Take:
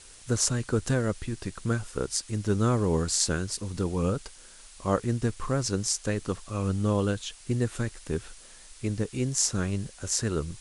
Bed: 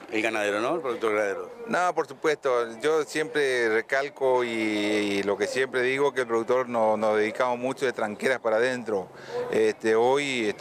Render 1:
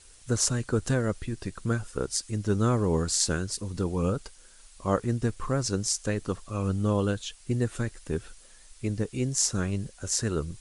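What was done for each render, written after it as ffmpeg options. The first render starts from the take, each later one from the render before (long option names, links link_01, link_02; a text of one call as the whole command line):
ffmpeg -i in.wav -af "afftdn=noise_reduction=6:noise_floor=-50" out.wav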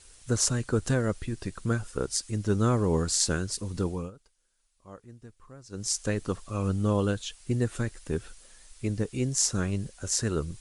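ffmpeg -i in.wav -filter_complex "[0:a]asplit=3[link_01][link_02][link_03];[link_01]atrim=end=4.11,asetpts=PTS-STARTPTS,afade=type=out:start_time=3.86:duration=0.25:silence=0.0891251[link_04];[link_02]atrim=start=4.11:end=5.69,asetpts=PTS-STARTPTS,volume=-21dB[link_05];[link_03]atrim=start=5.69,asetpts=PTS-STARTPTS,afade=type=in:duration=0.25:silence=0.0891251[link_06];[link_04][link_05][link_06]concat=n=3:v=0:a=1" out.wav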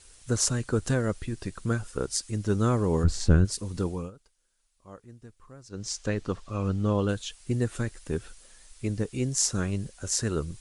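ffmpeg -i in.wav -filter_complex "[0:a]asplit=3[link_01][link_02][link_03];[link_01]afade=type=out:start_time=3.03:duration=0.02[link_04];[link_02]aemphasis=mode=reproduction:type=riaa,afade=type=in:start_time=3.03:duration=0.02,afade=type=out:start_time=3.44:duration=0.02[link_05];[link_03]afade=type=in:start_time=3.44:duration=0.02[link_06];[link_04][link_05][link_06]amix=inputs=3:normalize=0,asettb=1/sr,asplit=3[link_07][link_08][link_09];[link_07]atrim=end=5.694[link_10];[link_08]atrim=start=5.69:end=7.09,asetpts=PTS-STARTPTS,afade=type=in:duration=0.004:curve=qsin,afade=type=out:start_time=1.396:duration=0.004:curve=qsin,lowpass=5500[link_11];[link_09]atrim=start=7.086[link_12];[link_10][link_11]acrossfade=duration=0.004:curve1=hsin:curve2=qsin[link_13];[link_13][link_12]acrossfade=duration=0.004:curve1=qsin:curve2=hsin" out.wav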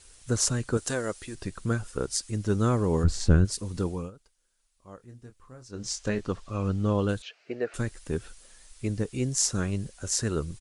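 ffmpeg -i in.wav -filter_complex "[0:a]asettb=1/sr,asplit=3[link_01][link_02][link_03];[link_01]atrim=end=0.774[link_04];[link_02]atrim=start=0.77:end=1.35,asetpts=PTS-STARTPTS,afade=type=in:duration=0.004:curve=qsin,afade=type=out:start_time=0.576:duration=0.004:curve=qsin,bass=frequency=250:gain=-12,treble=frequency=4000:gain=6[link_05];[link_03]atrim=start=1.346[link_06];[link_04][link_05]acrossfade=duration=0.004:curve1=hsin:curve2=qsin[link_07];[link_07][link_06]acrossfade=duration=0.004:curve1=qsin:curve2=hsin,asplit=3[link_08][link_09][link_10];[link_08]afade=type=out:start_time=4.99:duration=0.02[link_11];[link_09]asplit=2[link_12][link_13];[link_13]adelay=24,volume=-7.5dB[link_14];[link_12][link_14]amix=inputs=2:normalize=0,afade=type=in:start_time=4.99:duration=0.02,afade=type=out:start_time=6.2:duration=0.02[link_15];[link_10]afade=type=in:start_time=6.2:duration=0.02[link_16];[link_11][link_15][link_16]amix=inputs=3:normalize=0,asettb=1/sr,asplit=3[link_17][link_18][link_19];[link_17]atrim=end=7.224[link_20];[link_18]atrim=start=7.22:end=7.74,asetpts=PTS-STARTPTS,afade=type=in:duration=0.004:curve=qsin,afade=type=out:start_time=0.516:duration=0.004:curve=qsin,highpass=430,equalizer=frequency=440:width_type=q:width=4:gain=7,equalizer=frequency=640:width_type=q:width=4:gain=9,equalizer=frequency=1000:width_type=q:width=4:gain=-6,equalizer=frequency=1500:width_type=q:width=4:gain=4,equalizer=frequency=2400:width_type=q:width=4:gain=5,equalizer=frequency=3500:width_type=q:width=4:gain=-10,lowpass=frequency=4100:width=0.5412,lowpass=frequency=4100:width=1.3066[link_21];[link_19]atrim=start=7.736[link_22];[link_20][link_21]acrossfade=duration=0.004:curve1=hsin:curve2=qsin[link_23];[link_23][link_22]acrossfade=duration=0.004:curve1=qsin:curve2=hsin" out.wav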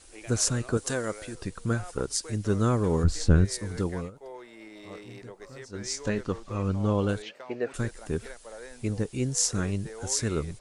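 ffmpeg -i in.wav -i bed.wav -filter_complex "[1:a]volume=-20.5dB[link_01];[0:a][link_01]amix=inputs=2:normalize=0" out.wav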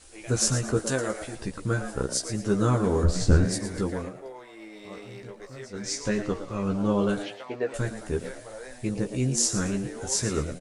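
ffmpeg -i in.wav -filter_complex "[0:a]asplit=2[link_01][link_02];[link_02]adelay=15,volume=-4dB[link_03];[link_01][link_03]amix=inputs=2:normalize=0,asplit=5[link_04][link_05][link_06][link_07][link_08];[link_05]adelay=113,afreqshift=100,volume=-11dB[link_09];[link_06]adelay=226,afreqshift=200,volume=-19.9dB[link_10];[link_07]adelay=339,afreqshift=300,volume=-28.7dB[link_11];[link_08]adelay=452,afreqshift=400,volume=-37.6dB[link_12];[link_04][link_09][link_10][link_11][link_12]amix=inputs=5:normalize=0" out.wav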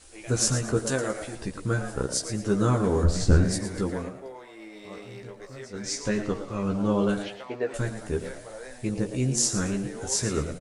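ffmpeg -i in.wav -filter_complex "[0:a]asplit=2[link_01][link_02];[link_02]adelay=85,lowpass=frequency=2000:poles=1,volume=-16dB,asplit=2[link_03][link_04];[link_04]adelay=85,lowpass=frequency=2000:poles=1,volume=0.47,asplit=2[link_05][link_06];[link_06]adelay=85,lowpass=frequency=2000:poles=1,volume=0.47,asplit=2[link_07][link_08];[link_08]adelay=85,lowpass=frequency=2000:poles=1,volume=0.47[link_09];[link_01][link_03][link_05][link_07][link_09]amix=inputs=5:normalize=0" out.wav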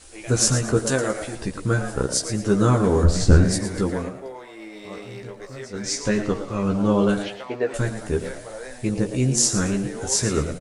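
ffmpeg -i in.wav -af "volume=5dB" out.wav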